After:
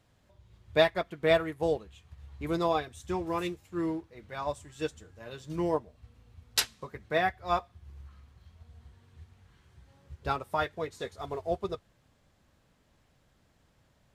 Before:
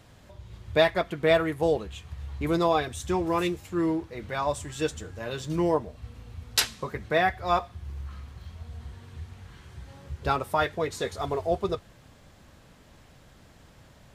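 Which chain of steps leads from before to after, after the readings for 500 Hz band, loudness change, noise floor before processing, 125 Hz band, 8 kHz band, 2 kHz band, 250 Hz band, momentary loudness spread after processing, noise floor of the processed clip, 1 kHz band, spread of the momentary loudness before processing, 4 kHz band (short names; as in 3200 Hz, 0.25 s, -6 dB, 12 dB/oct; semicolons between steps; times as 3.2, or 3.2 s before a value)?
-4.0 dB, -4.5 dB, -55 dBFS, -7.0 dB, -4.5 dB, -4.0 dB, -5.5 dB, 15 LU, -68 dBFS, -4.5 dB, 20 LU, -4.0 dB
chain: upward expander 1.5:1, over -40 dBFS; gain -1.5 dB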